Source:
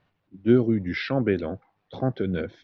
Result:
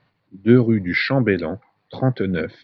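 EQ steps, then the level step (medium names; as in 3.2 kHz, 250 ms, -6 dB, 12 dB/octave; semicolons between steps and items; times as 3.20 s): peaking EQ 4.4 kHz +12 dB 0.27 oct; dynamic bell 1.8 kHz, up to +4 dB, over -45 dBFS, Q 1.3; ten-band graphic EQ 125 Hz +12 dB, 250 Hz +7 dB, 500 Hz +7 dB, 1 kHz +8 dB, 2 kHz +10 dB, 4 kHz +6 dB; -5.5 dB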